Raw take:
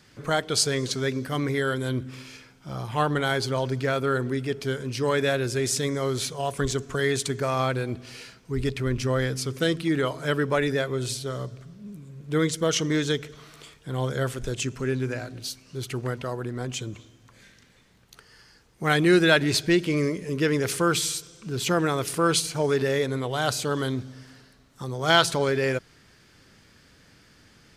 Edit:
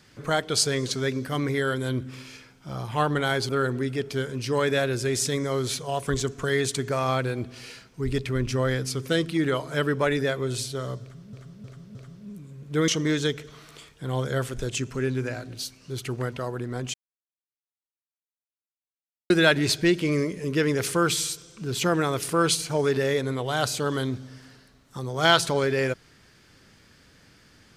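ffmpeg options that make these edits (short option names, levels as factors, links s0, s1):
-filter_complex "[0:a]asplit=8[s0][s1][s2][s3][s4][s5][s6][s7];[s0]atrim=end=3.492[s8];[s1]atrim=start=3.998:end=11.842[s9];[s2]atrim=start=11.528:end=11.842[s10];[s3]atrim=start=11.528:end=11.842[s11];[s4]atrim=start=11.528:end=12.462[s12];[s5]atrim=start=12.728:end=16.79,asetpts=PTS-STARTPTS,afade=t=out:st=4.058:d=0.004:c=hsin[s13];[s6]atrim=start=16.79:end=19.15,asetpts=PTS-STARTPTS,volume=0[s14];[s7]atrim=start=19.15,asetpts=PTS-STARTPTS,afade=t=in:d=0.004:c=hsin[s15];[s8][s9]acrossfade=d=0.004:c1=hsin:c2=hsin[s16];[s16][s10]acrossfade=d=0.004:c1=hsin:c2=hsin[s17];[s17][s11]acrossfade=d=0.004:c1=hsin:c2=hsin[s18];[s18][s12]acrossfade=d=0.004:c1=hsin:c2=hsin[s19];[s13][s14][s15]concat=n=3:v=0:a=1[s20];[s19][s20]acrossfade=d=0.004:c1=hsin:c2=hsin"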